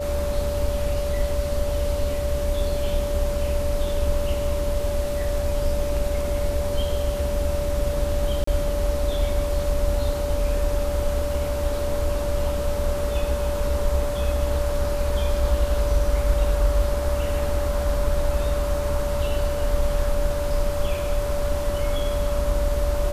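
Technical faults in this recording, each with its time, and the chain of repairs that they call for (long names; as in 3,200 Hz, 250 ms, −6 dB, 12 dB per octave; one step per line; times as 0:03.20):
whistle 580 Hz −26 dBFS
0:08.44–0:08.47: drop-out 34 ms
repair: notch filter 580 Hz, Q 30
repair the gap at 0:08.44, 34 ms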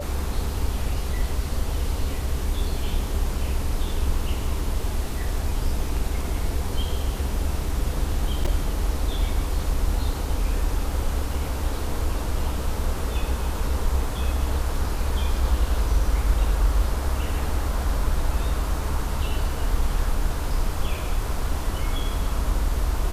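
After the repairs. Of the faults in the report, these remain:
none of them is left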